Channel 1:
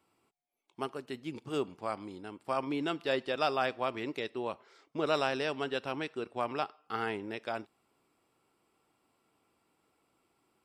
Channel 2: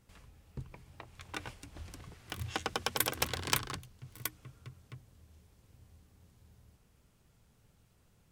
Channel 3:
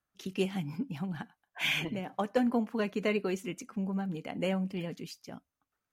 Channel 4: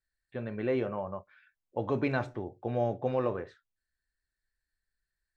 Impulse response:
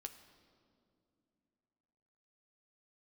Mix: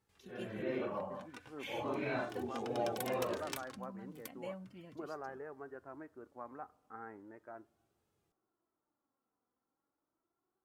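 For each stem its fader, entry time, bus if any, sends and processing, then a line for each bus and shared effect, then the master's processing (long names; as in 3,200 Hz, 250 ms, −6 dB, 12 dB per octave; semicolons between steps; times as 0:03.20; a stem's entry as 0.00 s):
−11.0 dB, 0.00 s, send −11 dB, Butterworth low-pass 1,800 Hz 48 dB per octave
−9.0 dB, 0.00 s, no send, high-pass filter 89 Hz
−11.0 dB, 0.00 s, no send, notch comb filter 410 Hz
0.0 dB, 0.00 s, no send, random phases in long frames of 200 ms; low-shelf EQ 170 Hz −11 dB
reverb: on, RT60 2.6 s, pre-delay 6 ms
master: flanger 0.37 Hz, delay 2.3 ms, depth 1.8 ms, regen +48%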